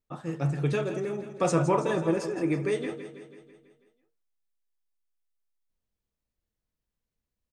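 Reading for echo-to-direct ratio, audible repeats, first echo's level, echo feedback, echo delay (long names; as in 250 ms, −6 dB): −9.5 dB, 5, −11.5 dB, 58%, 164 ms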